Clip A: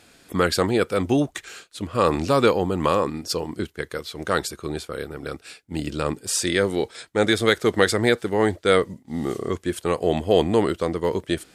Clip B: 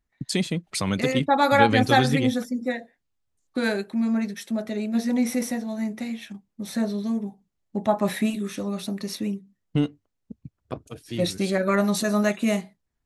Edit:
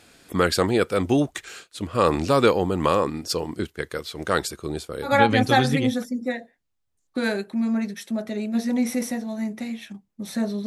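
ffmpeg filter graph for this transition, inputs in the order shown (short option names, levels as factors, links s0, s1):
-filter_complex "[0:a]asettb=1/sr,asplit=3[s0][s1][s2];[s0]atrim=end=4.594[s3];[s1]atrim=start=4.59:end=5.14,asetpts=PTS-STARTPTS,afade=t=in:d=0.004:c=qsin,afade=t=out:st=0.546:d=0.004:c=qsin,equalizer=f=1800:t=o:w=1.7:g=-5.5[s4];[s2]atrim=start=5.136[s5];[s3][s4]acrossfade=d=0.004:c1=hsin:c2=qsin[s6];[s6][s5]acrossfade=d=0.004:c1=qsin:c2=hsin,apad=whole_dur=10.66,atrim=end=10.66,atrim=end=5.14,asetpts=PTS-STARTPTS[s7];[1:a]atrim=start=1.42:end=7.06,asetpts=PTS-STARTPTS[s8];[s7][s8]acrossfade=d=0.12:c1=tri:c2=tri"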